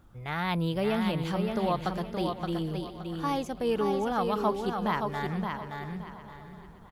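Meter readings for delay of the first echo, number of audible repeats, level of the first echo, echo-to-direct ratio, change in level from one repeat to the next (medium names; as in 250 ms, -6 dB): 571 ms, 9, -5.0 dB, -4.0 dB, no regular repeats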